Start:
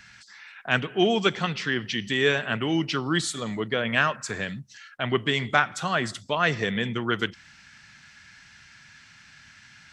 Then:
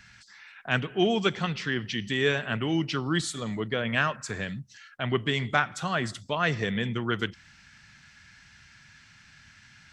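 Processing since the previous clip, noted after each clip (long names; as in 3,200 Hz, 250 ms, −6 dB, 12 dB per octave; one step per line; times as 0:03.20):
low-shelf EQ 140 Hz +8 dB
level −3.5 dB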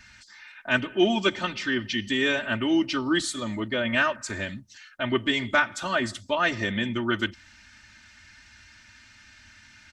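comb filter 3.3 ms, depth 98%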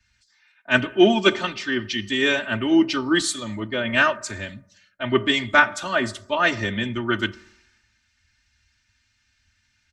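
convolution reverb RT60 1.1 s, pre-delay 3 ms, DRR 16 dB
multiband upward and downward expander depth 70%
level +3 dB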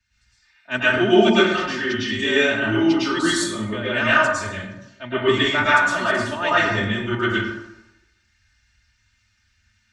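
dense smooth reverb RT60 0.89 s, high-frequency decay 0.55×, pre-delay 95 ms, DRR −9 dB
level −7 dB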